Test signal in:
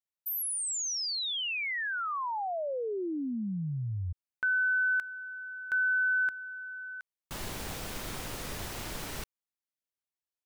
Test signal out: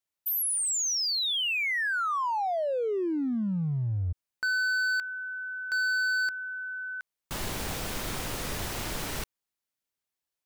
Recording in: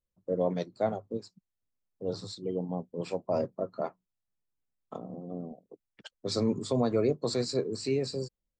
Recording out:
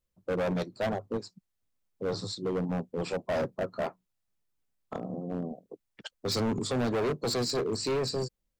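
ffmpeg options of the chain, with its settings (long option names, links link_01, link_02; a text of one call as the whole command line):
ffmpeg -i in.wav -af "asoftclip=type=hard:threshold=-31dB,volume=5dB" out.wav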